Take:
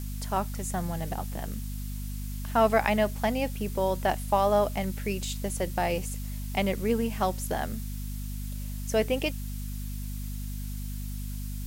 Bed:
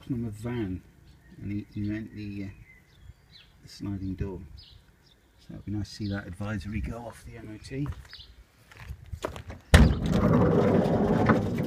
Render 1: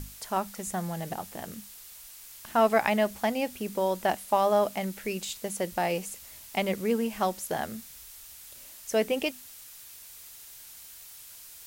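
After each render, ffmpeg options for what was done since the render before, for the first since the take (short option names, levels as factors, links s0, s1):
-af "bandreject=f=50:t=h:w=6,bandreject=f=100:t=h:w=6,bandreject=f=150:t=h:w=6,bandreject=f=200:t=h:w=6,bandreject=f=250:t=h:w=6"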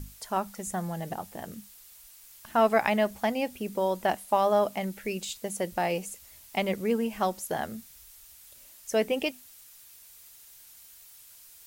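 -af "afftdn=nr=6:nf=-48"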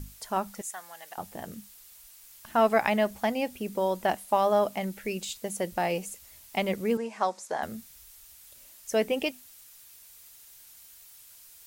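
-filter_complex "[0:a]asettb=1/sr,asplit=3[s0][s1][s2];[s0]atrim=end=0.614[s3];[s1]atrim=start=0.61:end=1.18,asetpts=PTS-STARTPTS,afade=t=in:d=0.004:c=qsin,afade=t=out:st=0.566:d=0.004:c=qsin,highpass=1200[s4];[s2]atrim=start=1.176[s5];[s3][s4]acrossfade=d=0.004:c1=hsin:c2=qsin[s6];[s6][s5]acrossfade=d=0.004:c1=qsin:c2=hsin,asettb=1/sr,asplit=3[s7][s8][s9];[s7]atrim=end=6.974[s10];[s8]atrim=start=6.97:end=7.63,asetpts=PTS-STARTPTS,afade=t=in:d=0.004:c=qsin,afade=t=out:st=0.656:d=0.004:c=qsin,highpass=340,equalizer=f=340:t=q:w=4:g=-4,equalizer=f=1000:t=q:w=4:g=4,equalizer=f=3000:t=q:w=4:g=-8,lowpass=f=8200:w=0.5412,lowpass=f=8200:w=1.3066[s11];[s9]atrim=start=7.626[s12];[s10][s11]acrossfade=d=0.004:c1=hsin:c2=qsin[s13];[s13][s12]acrossfade=d=0.004:c1=qsin:c2=hsin"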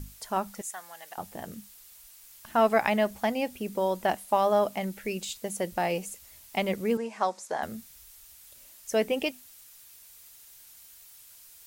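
-af anull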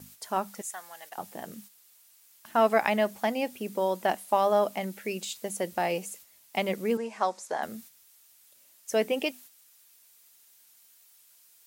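-af "agate=range=0.447:threshold=0.00398:ratio=16:detection=peak,highpass=180"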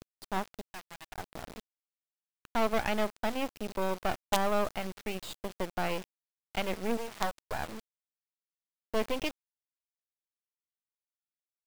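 -af "aresample=11025,asoftclip=type=tanh:threshold=0.15,aresample=44100,acrusher=bits=4:dc=4:mix=0:aa=0.000001"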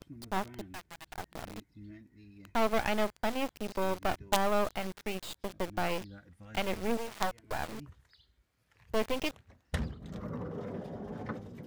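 -filter_complex "[1:a]volume=0.133[s0];[0:a][s0]amix=inputs=2:normalize=0"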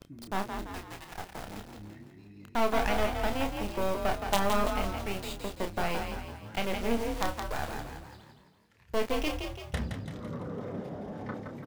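-filter_complex "[0:a]asplit=2[s0][s1];[s1]adelay=30,volume=0.447[s2];[s0][s2]amix=inputs=2:normalize=0,asplit=7[s3][s4][s5][s6][s7][s8][s9];[s4]adelay=168,afreqshift=37,volume=0.501[s10];[s5]adelay=336,afreqshift=74,volume=0.245[s11];[s6]adelay=504,afreqshift=111,volume=0.12[s12];[s7]adelay=672,afreqshift=148,volume=0.0589[s13];[s8]adelay=840,afreqshift=185,volume=0.0288[s14];[s9]adelay=1008,afreqshift=222,volume=0.0141[s15];[s3][s10][s11][s12][s13][s14][s15]amix=inputs=7:normalize=0"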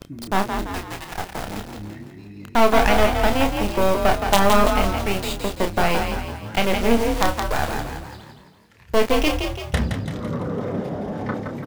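-af "volume=3.76,alimiter=limit=0.891:level=0:latency=1"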